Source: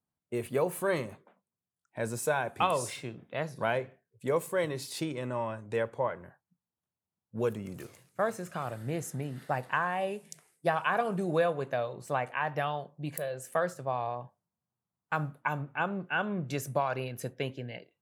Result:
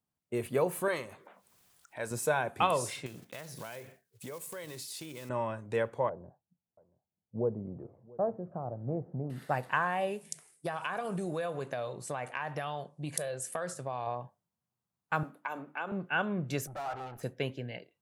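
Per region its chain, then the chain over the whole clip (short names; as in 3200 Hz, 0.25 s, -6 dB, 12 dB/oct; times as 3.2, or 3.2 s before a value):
0.88–2.11 bell 160 Hz -11 dB 2.8 oct + upward compressor, threshold -42 dBFS
3.06–5.3 block floating point 5-bit + high shelf 2700 Hz +11.5 dB + compressor, threshold -40 dBFS
6.09–9.3 Chebyshev low-pass 760 Hz, order 3 + echo 0.682 s -22.5 dB
10.21–14.07 careless resampling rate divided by 2×, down none, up filtered + compressor, threshold -31 dBFS + high shelf 5900 Hz +10.5 dB
15.23–15.92 steep high-pass 200 Hz + notches 50/100/150/200/250/300/350 Hz + compressor 4:1, threshold -32 dBFS
16.67–17.23 high shelf 2600 Hz -7.5 dB + tube stage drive 44 dB, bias 0.65 + small resonant body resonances 800/1300 Hz, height 17 dB, ringing for 25 ms
whole clip: dry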